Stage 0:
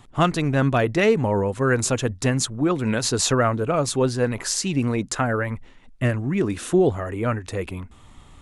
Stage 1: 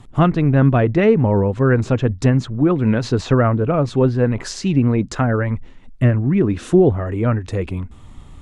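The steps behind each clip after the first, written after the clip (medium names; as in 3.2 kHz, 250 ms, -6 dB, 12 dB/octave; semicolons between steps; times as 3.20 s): low-pass that closes with the level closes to 2.5 kHz, closed at -18 dBFS; bass shelf 400 Hz +9 dB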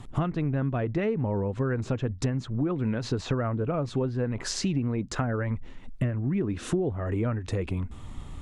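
compression 6:1, threshold -25 dBFS, peak gain reduction 16 dB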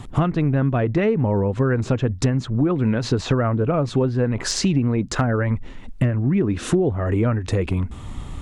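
one-sided clip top -20 dBFS, bottom -16 dBFS; trim +8 dB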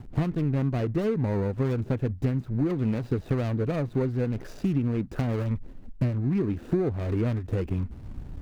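median filter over 41 samples; trim -6 dB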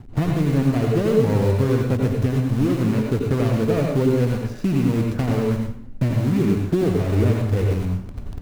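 in parallel at -8 dB: bit crusher 5-bit; on the sum: plate-style reverb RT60 0.55 s, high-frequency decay 0.8×, pre-delay 75 ms, DRR 1 dB; trim +1.5 dB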